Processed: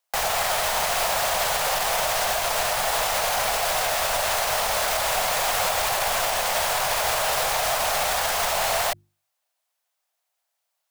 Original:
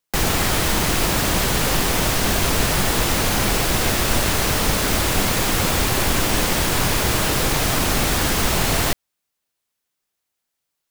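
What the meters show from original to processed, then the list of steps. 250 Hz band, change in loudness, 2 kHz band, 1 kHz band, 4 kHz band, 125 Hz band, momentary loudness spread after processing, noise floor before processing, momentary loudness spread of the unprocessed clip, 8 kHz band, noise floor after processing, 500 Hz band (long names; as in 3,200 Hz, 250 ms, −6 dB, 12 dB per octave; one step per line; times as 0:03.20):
−22.5 dB, −3.5 dB, −3.0 dB, +1.0 dB, −3.5 dB, −19.0 dB, 1 LU, −79 dBFS, 0 LU, −3.5 dB, −79 dBFS, −1.5 dB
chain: low shelf with overshoot 450 Hz −13.5 dB, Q 3
mains-hum notches 50/100/150/200/250/300/350 Hz
brickwall limiter −14 dBFS, peak gain reduction 7.5 dB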